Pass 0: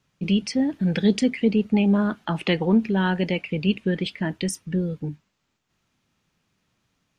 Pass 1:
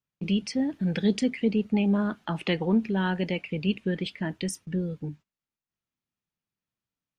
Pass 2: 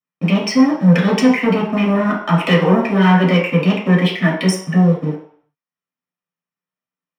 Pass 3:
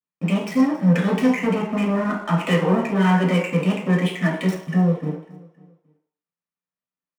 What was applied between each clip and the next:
gate -42 dBFS, range -17 dB; gain -4.5 dB
sample leveller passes 3; reverb RT60 0.60 s, pre-delay 3 ms, DRR -4.5 dB; gain -3.5 dB
median filter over 9 samples; feedback echo 0.273 s, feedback 42%, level -19.5 dB; gain -5.5 dB

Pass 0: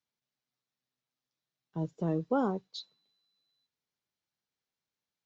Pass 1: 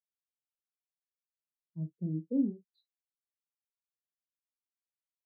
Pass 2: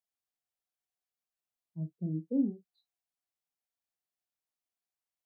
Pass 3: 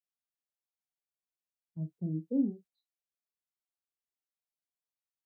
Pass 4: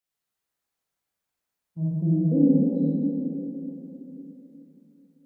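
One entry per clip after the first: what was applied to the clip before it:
early reflections 39 ms -6 dB, 61 ms -16.5 dB; treble ducked by the level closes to 410 Hz, closed at -27 dBFS; spectral expander 2.5:1
bell 720 Hz +9.5 dB 0.27 oct
gate -53 dBFS, range -9 dB
reverb RT60 3.7 s, pre-delay 33 ms, DRR -7.5 dB; gain +5 dB

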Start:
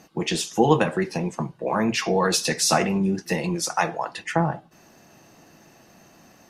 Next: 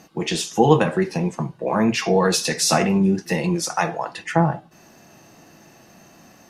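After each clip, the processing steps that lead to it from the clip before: harmonic-percussive split harmonic +5 dB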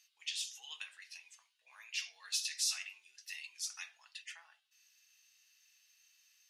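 ladder high-pass 2300 Hz, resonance 30%; gain -7.5 dB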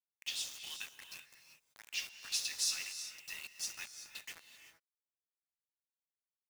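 bit-crush 8-bit; non-linear reverb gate 0.41 s rising, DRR 8.5 dB

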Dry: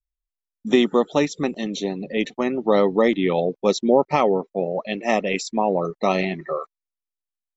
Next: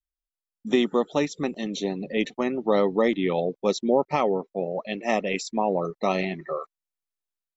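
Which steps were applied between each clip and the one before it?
AGC gain up to 7 dB; gain -7.5 dB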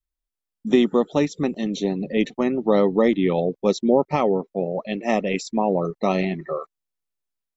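low shelf 410 Hz +7.5 dB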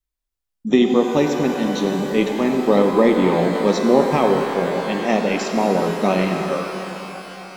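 shimmer reverb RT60 3.5 s, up +12 st, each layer -8 dB, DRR 3.5 dB; gain +2 dB

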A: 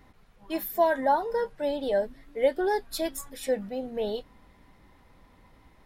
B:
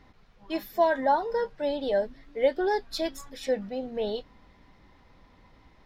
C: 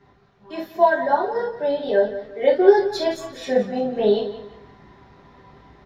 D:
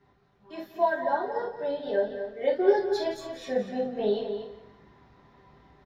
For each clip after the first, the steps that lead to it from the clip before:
resonant high shelf 7200 Hz -10 dB, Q 1.5
vocal rider 2 s; feedback echo 0.174 s, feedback 30%, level -13 dB; reverb, pre-delay 3 ms, DRR -7.5 dB; gain -9 dB
outdoor echo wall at 40 m, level -8 dB; gain -8.5 dB

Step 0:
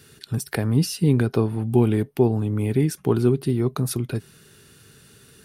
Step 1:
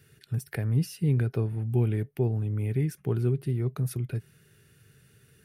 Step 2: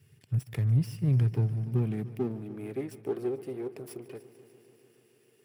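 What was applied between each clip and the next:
ten-band EQ 125 Hz +6 dB, 250 Hz -6 dB, 1000 Hz -8 dB, 2000 Hz +4 dB, 4000 Hz -7 dB, 8000 Hz -5 dB; gain -7.5 dB
minimum comb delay 0.38 ms; high-pass sweep 100 Hz -> 380 Hz, 1.25–2.88; multi-head echo 0.147 s, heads first and second, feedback 69%, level -20.5 dB; gain -5.5 dB

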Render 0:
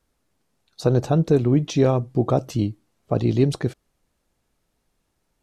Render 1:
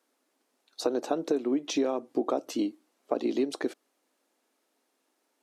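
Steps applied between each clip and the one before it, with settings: elliptic high-pass 260 Hz, stop band 80 dB; compressor 6:1, threshold -25 dBFS, peak gain reduction 11 dB; gain +1 dB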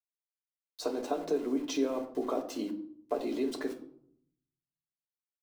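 sample gate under -43 dBFS; reverb RT60 0.65 s, pre-delay 3 ms, DRR 1 dB; gain -7 dB

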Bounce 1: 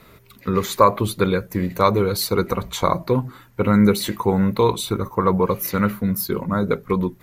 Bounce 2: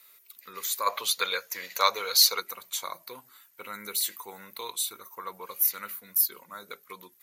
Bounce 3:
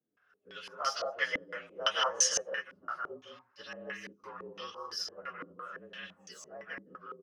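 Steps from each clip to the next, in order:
low shelf 210 Hz -9.5 dB; spectral gain 0.86–2.4, 420–7200 Hz +11 dB; differentiator
inharmonic rescaling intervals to 113%; loudspeakers at several distances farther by 55 m -5 dB, 69 m -5 dB; stepped low-pass 5.9 Hz 280–4900 Hz; gain -3.5 dB

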